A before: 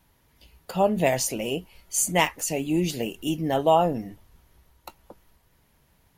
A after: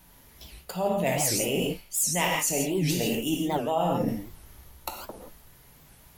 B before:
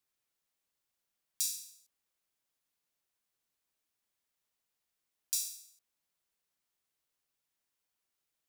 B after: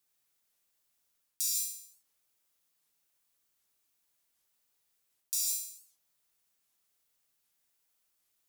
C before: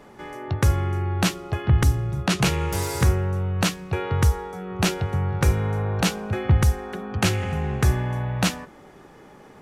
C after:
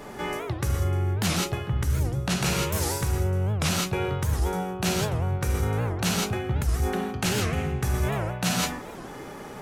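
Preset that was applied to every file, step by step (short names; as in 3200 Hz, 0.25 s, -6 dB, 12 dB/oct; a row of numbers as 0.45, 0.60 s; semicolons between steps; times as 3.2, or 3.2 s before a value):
high shelf 5800 Hz +7 dB; non-linear reverb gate 0.19 s flat, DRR 1 dB; reverse; compressor 6:1, threshold -29 dBFS; reverse; record warp 78 rpm, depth 250 cents; normalise peaks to -12 dBFS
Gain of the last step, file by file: +5.5, +1.0, +5.5 dB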